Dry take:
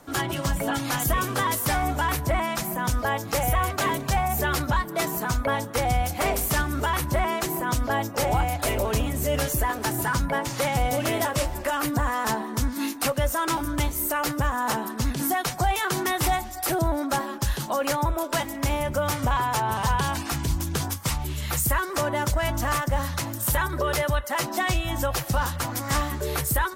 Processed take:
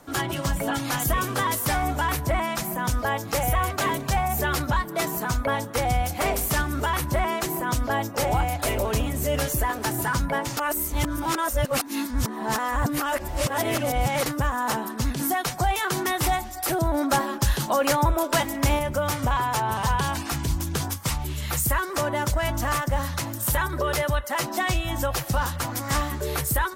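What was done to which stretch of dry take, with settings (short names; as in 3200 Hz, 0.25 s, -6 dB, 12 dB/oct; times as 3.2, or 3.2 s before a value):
10.57–14.26 reverse
16.94–18.79 gain +3.5 dB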